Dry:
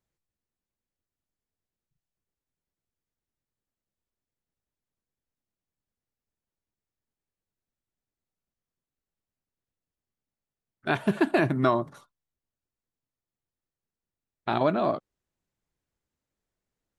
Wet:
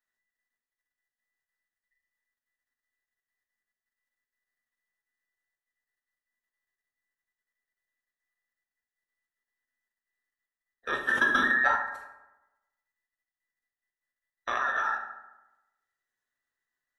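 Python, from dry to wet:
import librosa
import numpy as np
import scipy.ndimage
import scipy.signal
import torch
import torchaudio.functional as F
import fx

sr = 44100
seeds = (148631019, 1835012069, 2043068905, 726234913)

y = fx.band_invert(x, sr, width_hz=2000)
y = fx.peak_eq(y, sr, hz=170.0, db=-3.5, octaves=2.2)
y = fx.level_steps(y, sr, step_db=10)
y = fx.rev_fdn(y, sr, rt60_s=1.0, lf_ratio=1.05, hf_ratio=0.5, size_ms=24.0, drr_db=1.0)
y = fx.env_flatten(y, sr, amount_pct=50, at=(11.1, 11.76))
y = F.gain(torch.from_numpy(y), -1.0).numpy()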